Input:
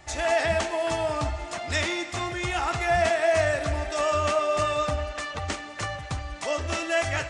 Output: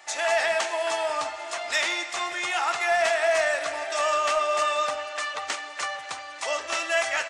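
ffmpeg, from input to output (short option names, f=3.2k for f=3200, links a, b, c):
-filter_complex "[0:a]highpass=720,asplit=2[a][b];[b]asoftclip=type=hard:threshold=-22.5dB,volume=-7dB[c];[a][c]amix=inputs=2:normalize=0,aecho=1:1:591:0.126"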